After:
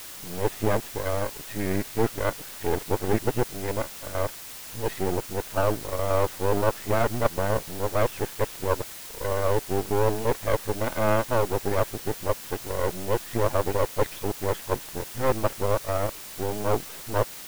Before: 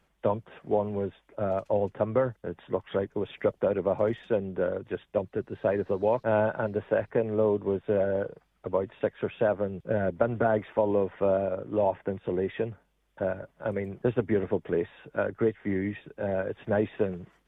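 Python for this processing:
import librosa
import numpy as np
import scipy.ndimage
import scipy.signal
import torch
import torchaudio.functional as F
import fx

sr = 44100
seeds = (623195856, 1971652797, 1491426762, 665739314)

p1 = np.flip(x).copy()
p2 = np.maximum(p1, 0.0)
p3 = fx.quant_dither(p2, sr, seeds[0], bits=6, dither='triangular')
p4 = p2 + F.gain(torch.from_numpy(p3), -6.5).numpy()
y = F.gain(torch.from_numpy(p4), 2.0).numpy()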